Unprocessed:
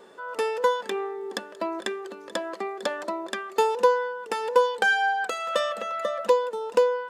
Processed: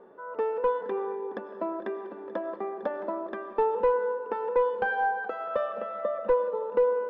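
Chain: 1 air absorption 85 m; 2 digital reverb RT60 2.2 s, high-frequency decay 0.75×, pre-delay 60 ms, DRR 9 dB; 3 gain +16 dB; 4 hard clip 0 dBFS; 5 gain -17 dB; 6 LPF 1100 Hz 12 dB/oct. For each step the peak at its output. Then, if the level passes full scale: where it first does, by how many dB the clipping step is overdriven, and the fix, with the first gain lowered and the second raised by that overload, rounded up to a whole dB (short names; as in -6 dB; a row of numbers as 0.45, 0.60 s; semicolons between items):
-8.0, -8.0, +8.0, 0.0, -17.0, -16.5 dBFS; step 3, 8.0 dB; step 3 +8 dB, step 5 -9 dB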